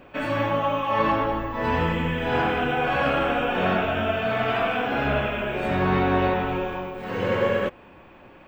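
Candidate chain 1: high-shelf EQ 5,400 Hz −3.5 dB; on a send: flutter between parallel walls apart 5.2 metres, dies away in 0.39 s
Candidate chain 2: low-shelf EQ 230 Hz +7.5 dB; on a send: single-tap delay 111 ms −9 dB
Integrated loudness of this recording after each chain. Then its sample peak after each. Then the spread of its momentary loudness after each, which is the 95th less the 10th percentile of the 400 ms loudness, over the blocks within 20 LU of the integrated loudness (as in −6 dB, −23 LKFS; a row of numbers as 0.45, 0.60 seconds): −22.5, −22.0 LKFS; −8.5, −7.0 dBFS; 5, 6 LU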